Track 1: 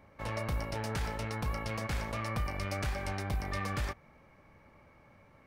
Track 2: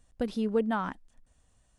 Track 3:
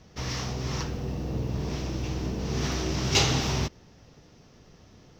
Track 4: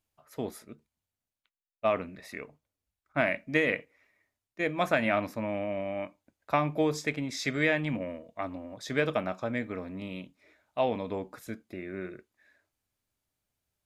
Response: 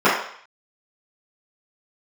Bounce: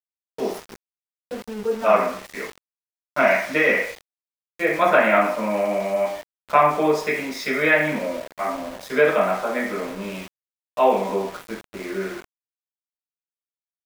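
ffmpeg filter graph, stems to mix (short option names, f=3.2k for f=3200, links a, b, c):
-filter_complex "[1:a]adelay=1100,volume=-8.5dB,asplit=2[a][b];[b]volume=-13.5dB[c];[2:a]highpass=640,asoftclip=type=tanh:threshold=-36.5dB,adelay=150,volume=-6dB[d];[3:a]highpass=110,bandreject=f=60:t=h:w=6,bandreject=f=120:t=h:w=6,bandreject=f=180:t=h:w=6,bandreject=f=240:t=h:w=6,bandreject=f=300:t=h:w=6,bandreject=f=360:t=h:w=6,bandreject=f=420:t=h:w=6,bandreject=f=480:t=h:w=6,volume=0dB,asplit=2[e][f];[f]volume=-13.5dB[g];[4:a]atrim=start_sample=2205[h];[c][g]amix=inputs=2:normalize=0[i];[i][h]afir=irnorm=-1:irlink=0[j];[a][d][e][j]amix=inputs=4:normalize=0,lowshelf=f=210:g=-11.5,bandreject=f=7.4k:w=10,aeval=exprs='val(0)*gte(abs(val(0)),0.02)':c=same"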